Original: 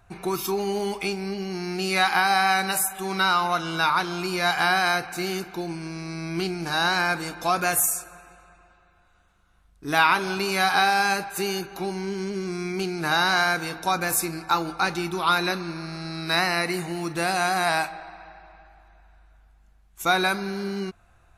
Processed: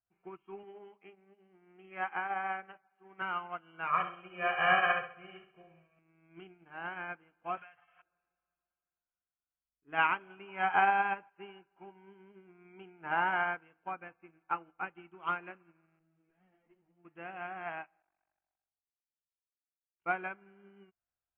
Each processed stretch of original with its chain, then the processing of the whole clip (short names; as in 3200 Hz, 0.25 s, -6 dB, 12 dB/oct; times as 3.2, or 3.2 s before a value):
0.63–3.22 BPF 180–2300 Hz + notches 50/100/150/200/250 Hz + Doppler distortion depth 0.11 ms
3.87–5.99 comb 1.7 ms, depth 97% + flutter echo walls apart 11.4 m, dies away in 0.98 s
7.57–8.02 zero-crossing step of -32 dBFS + EQ curve 170 Hz 0 dB, 240 Hz -17 dB, 410 Hz -7 dB, 730 Hz +7 dB, 3900 Hz +13 dB, 6600 Hz -1 dB, 9600 Hz -20 dB + compressor 8:1, threshold -25 dBFS
10.48–13.61 bell 1000 Hz +12 dB 0.46 oct + notch 1100 Hz, Q 5.4
15.99–17.05 tube stage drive 31 dB, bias 0.7 + tilt shelf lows +7 dB, about 850 Hz + ensemble effect
18.02–20.07 expander -45 dBFS + AM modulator 47 Hz, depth 95%
whole clip: Chebyshev low-pass 3200 Hz, order 10; low shelf 93 Hz -9.5 dB; upward expander 2.5:1, over -37 dBFS; gain -6 dB